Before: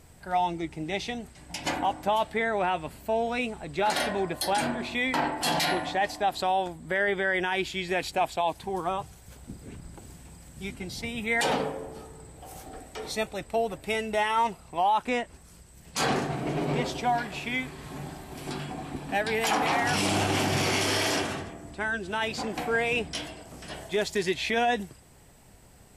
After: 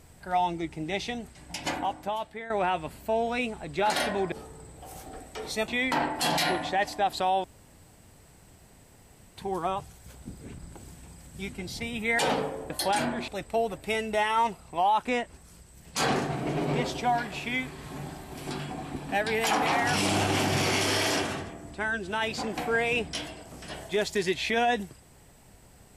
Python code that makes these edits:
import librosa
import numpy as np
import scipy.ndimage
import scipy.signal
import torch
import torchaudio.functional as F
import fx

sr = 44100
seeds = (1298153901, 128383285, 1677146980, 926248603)

y = fx.edit(x, sr, fx.fade_out_to(start_s=1.51, length_s=0.99, floor_db=-14.5),
    fx.swap(start_s=4.32, length_s=0.58, other_s=11.92, other_length_s=1.36),
    fx.room_tone_fill(start_s=6.66, length_s=1.93), tone=tone)